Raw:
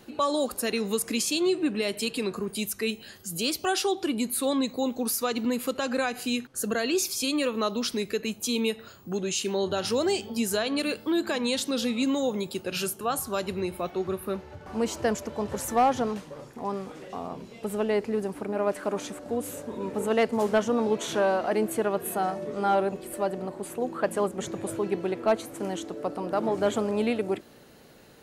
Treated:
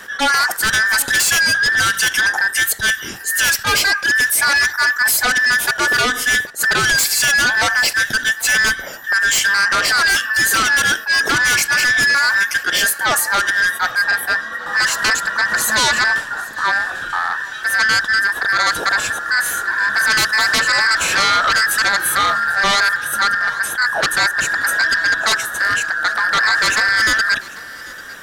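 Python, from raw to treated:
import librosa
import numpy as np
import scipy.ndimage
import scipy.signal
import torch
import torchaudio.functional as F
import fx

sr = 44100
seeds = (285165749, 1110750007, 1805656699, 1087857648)

p1 = fx.band_invert(x, sr, width_hz=2000)
p2 = fx.fold_sine(p1, sr, drive_db=13, ceiling_db=-11.5)
p3 = p2 + fx.echo_single(p2, sr, ms=793, db=-20.5, dry=0)
y = fx.attack_slew(p3, sr, db_per_s=290.0)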